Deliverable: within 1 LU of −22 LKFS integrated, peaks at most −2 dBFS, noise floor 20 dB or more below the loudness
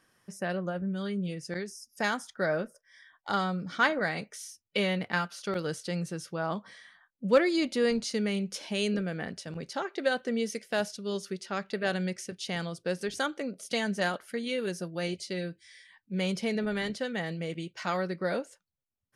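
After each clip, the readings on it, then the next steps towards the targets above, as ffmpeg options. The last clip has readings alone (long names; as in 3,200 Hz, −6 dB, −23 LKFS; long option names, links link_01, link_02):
integrated loudness −32.0 LKFS; sample peak −12.5 dBFS; target loudness −22.0 LKFS
→ -af "volume=10dB"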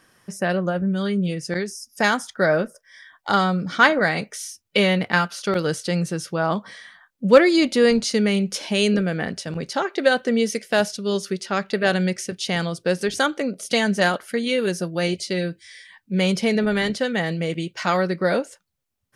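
integrated loudness −22.0 LKFS; sample peak −2.5 dBFS; background noise floor −69 dBFS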